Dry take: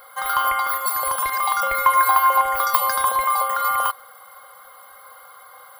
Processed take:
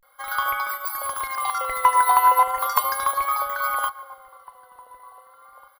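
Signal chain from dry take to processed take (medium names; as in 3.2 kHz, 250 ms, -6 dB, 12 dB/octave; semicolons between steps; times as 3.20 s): echo from a far wall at 300 m, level -11 dB; vibrato 0.36 Hz 96 cents; on a send: multi-head delay 74 ms, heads first and second, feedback 68%, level -23 dB; on the sum: upward expansion 1.5:1, over -38 dBFS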